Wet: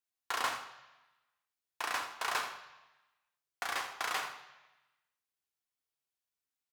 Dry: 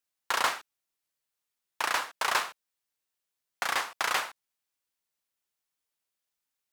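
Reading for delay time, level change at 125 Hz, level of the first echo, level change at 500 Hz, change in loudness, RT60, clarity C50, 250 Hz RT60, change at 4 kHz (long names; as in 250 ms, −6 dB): 83 ms, can't be measured, −13.0 dB, −6.5 dB, −6.5 dB, 1.1 s, 8.5 dB, 1.0 s, −6.5 dB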